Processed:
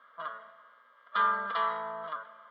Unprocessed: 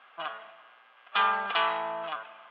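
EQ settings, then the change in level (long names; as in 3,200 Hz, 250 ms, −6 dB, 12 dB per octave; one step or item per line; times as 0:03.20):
phaser with its sweep stopped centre 520 Hz, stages 8
notch filter 1,500 Hz, Q 25
0.0 dB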